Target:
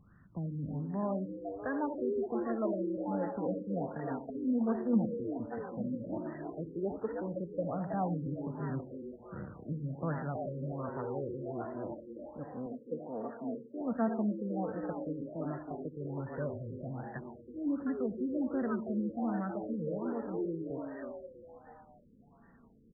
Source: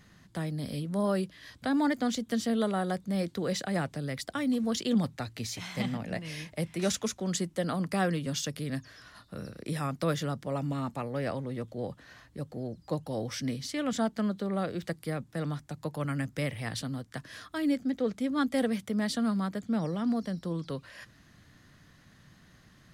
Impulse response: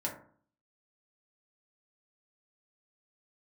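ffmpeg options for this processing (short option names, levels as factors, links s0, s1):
-filter_complex "[0:a]asettb=1/sr,asplit=3[s0][s1][s2];[s0]atrim=end=12.664[s3];[s1]atrim=start=12.66:end=13.81,asetpts=PTS-STARTPTS,afade=t=in:d=0.004:c=qsin,afade=t=out:st=1.146:d=0.004:c=qsin,highpass=240[s4];[s2]atrim=start=13.806[s5];[s3][s4]acrossfade=d=0.004:c1=hsin:c2=qsin[s6];[s6][s5]acrossfade=d=0.004:c1=qsin:c2=hsin,asplit=7[s7][s8][s9][s10][s11][s12][s13];[s8]adelay=322,afreqshift=110,volume=0.531[s14];[s9]adelay=644,afreqshift=220,volume=0.272[s15];[s10]adelay=966,afreqshift=330,volume=0.138[s16];[s11]adelay=1288,afreqshift=440,volume=0.0708[s17];[s12]adelay=1610,afreqshift=550,volume=0.0359[s18];[s13]adelay=1932,afreqshift=660,volume=0.0184[s19];[s7][s14][s15][s16][s17][s18][s19]amix=inputs=7:normalize=0,flanger=delay=0.7:depth=3.7:regen=30:speed=0.11:shape=sinusoidal,asplit=2[s20][s21];[1:a]atrim=start_sample=2205,adelay=68[s22];[s21][s22]afir=irnorm=-1:irlink=0,volume=0.168[s23];[s20][s23]amix=inputs=2:normalize=0,afftfilt=real='re*lt(b*sr/1024,520*pow(2000/520,0.5+0.5*sin(2*PI*1.3*pts/sr)))':imag='im*lt(b*sr/1024,520*pow(2000/520,0.5+0.5*sin(2*PI*1.3*pts/sr)))':win_size=1024:overlap=0.75,volume=0.891"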